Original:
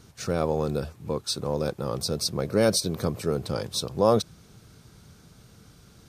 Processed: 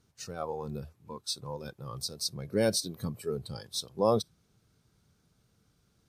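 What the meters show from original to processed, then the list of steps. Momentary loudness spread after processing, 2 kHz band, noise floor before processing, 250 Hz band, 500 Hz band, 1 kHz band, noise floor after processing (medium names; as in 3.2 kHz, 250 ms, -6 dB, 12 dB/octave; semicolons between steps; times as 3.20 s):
14 LU, -6.5 dB, -55 dBFS, -7.5 dB, -7.0 dB, -6.0 dB, -72 dBFS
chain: spectral noise reduction 12 dB; trim -5 dB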